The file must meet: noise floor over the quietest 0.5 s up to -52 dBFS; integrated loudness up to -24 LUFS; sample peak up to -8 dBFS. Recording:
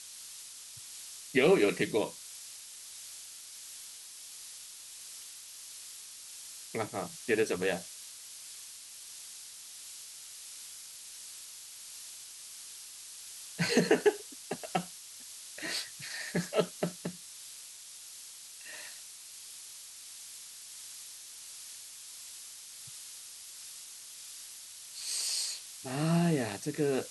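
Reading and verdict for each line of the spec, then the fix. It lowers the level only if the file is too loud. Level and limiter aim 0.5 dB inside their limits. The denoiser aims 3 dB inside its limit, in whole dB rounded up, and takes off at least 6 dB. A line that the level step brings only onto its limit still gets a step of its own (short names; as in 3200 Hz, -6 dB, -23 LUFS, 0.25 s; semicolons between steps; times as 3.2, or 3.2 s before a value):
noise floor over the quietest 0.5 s -49 dBFS: fail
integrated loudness -36.5 LUFS: OK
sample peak -11.5 dBFS: OK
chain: denoiser 6 dB, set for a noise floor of -49 dBFS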